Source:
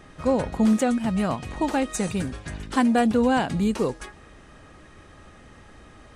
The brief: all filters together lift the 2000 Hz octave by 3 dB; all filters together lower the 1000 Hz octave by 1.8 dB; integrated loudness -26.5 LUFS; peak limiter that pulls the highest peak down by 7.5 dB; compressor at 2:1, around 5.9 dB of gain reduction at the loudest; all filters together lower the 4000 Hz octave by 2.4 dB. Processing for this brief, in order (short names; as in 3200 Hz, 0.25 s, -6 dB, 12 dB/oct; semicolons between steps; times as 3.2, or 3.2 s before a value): bell 1000 Hz -3.5 dB; bell 2000 Hz +6.5 dB; bell 4000 Hz -6.5 dB; compressor 2:1, threshold -27 dBFS; gain +5 dB; limiter -17.5 dBFS